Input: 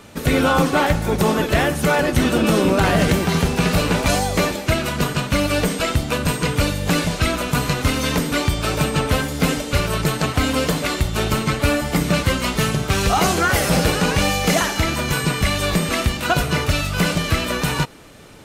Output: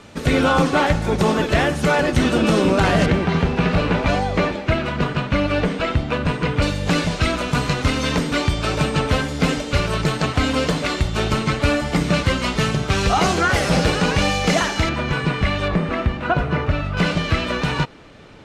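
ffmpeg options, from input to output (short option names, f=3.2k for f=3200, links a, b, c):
-af "asetnsamples=n=441:p=0,asendcmd='3.06 lowpass f 2900;6.62 lowpass f 6200;14.89 lowpass f 2900;15.68 lowpass f 1800;16.97 lowpass f 4100',lowpass=7k"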